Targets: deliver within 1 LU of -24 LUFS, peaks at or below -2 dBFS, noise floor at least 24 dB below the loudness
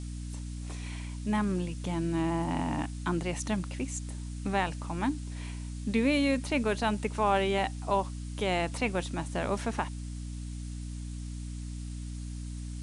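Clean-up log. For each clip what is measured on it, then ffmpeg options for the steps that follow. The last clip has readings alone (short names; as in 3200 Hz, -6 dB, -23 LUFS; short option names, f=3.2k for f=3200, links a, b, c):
hum 60 Hz; harmonics up to 300 Hz; hum level -35 dBFS; noise floor -39 dBFS; noise floor target -57 dBFS; loudness -32.5 LUFS; peak -15.0 dBFS; loudness target -24.0 LUFS
-> -af "bandreject=f=60:t=h:w=6,bandreject=f=120:t=h:w=6,bandreject=f=180:t=h:w=6,bandreject=f=240:t=h:w=6,bandreject=f=300:t=h:w=6"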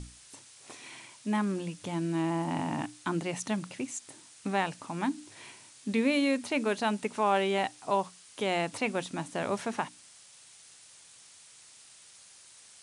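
hum none; noise floor -55 dBFS; noise floor target -56 dBFS
-> -af "afftdn=nr=6:nf=-55"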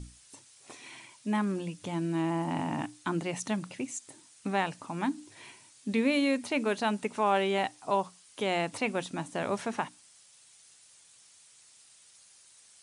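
noise floor -59 dBFS; loudness -31.5 LUFS; peak -15.5 dBFS; loudness target -24.0 LUFS
-> -af "volume=7.5dB"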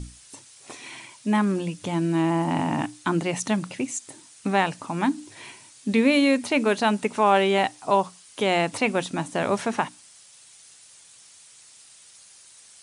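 loudness -24.0 LUFS; peak -8.0 dBFS; noise floor -51 dBFS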